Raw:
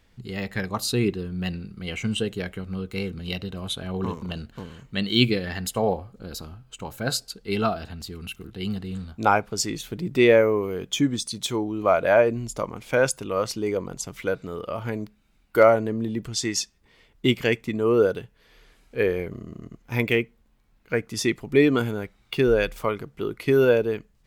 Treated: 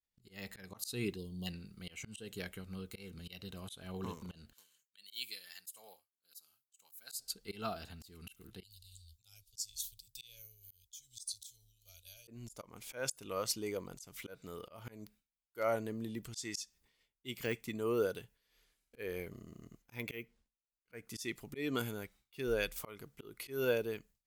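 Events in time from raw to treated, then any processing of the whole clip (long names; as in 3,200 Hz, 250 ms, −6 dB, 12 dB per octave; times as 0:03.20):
0:01.17–0:01.47: time-frequency box erased 1,100–2,800 Hz
0:04.53–0:07.19: first difference
0:08.63–0:12.28: inverse Chebyshev band-stop filter 150–2,000 Hz
0:17.37–0:18.02: de-essing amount 90%
0:19.94–0:20.94: linearly interpolated sample-rate reduction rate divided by 3×
whole clip: first-order pre-emphasis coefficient 0.8; downward expander −57 dBFS; volume swells 206 ms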